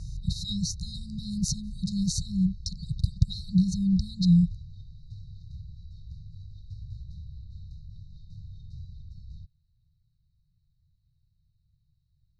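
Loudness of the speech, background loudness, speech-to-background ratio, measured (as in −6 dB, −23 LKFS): −27.5 LKFS, −45.5 LKFS, 18.0 dB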